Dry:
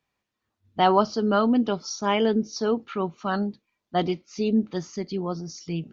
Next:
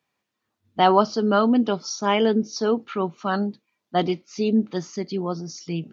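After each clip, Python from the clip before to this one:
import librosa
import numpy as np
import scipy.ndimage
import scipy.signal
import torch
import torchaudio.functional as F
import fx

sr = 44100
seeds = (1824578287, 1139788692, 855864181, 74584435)

y = scipy.signal.sosfilt(scipy.signal.butter(2, 130.0, 'highpass', fs=sr, output='sos'), x)
y = y * librosa.db_to_amplitude(2.5)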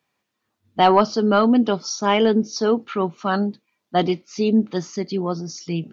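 y = 10.0 ** (-5.0 / 20.0) * np.tanh(x / 10.0 ** (-5.0 / 20.0))
y = y * librosa.db_to_amplitude(3.0)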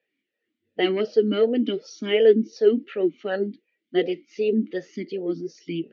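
y = fx.vowel_sweep(x, sr, vowels='e-i', hz=2.7)
y = y * librosa.db_to_amplitude(8.5)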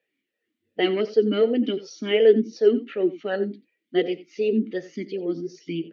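y = x + 10.0 ** (-16.5 / 20.0) * np.pad(x, (int(88 * sr / 1000.0), 0))[:len(x)]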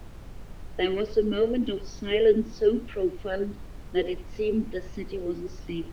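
y = fx.dmg_noise_colour(x, sr, seeds[0], colour='brown', level_db=-35.0)
y = y * librosa.db_to_amplitude(-4.0)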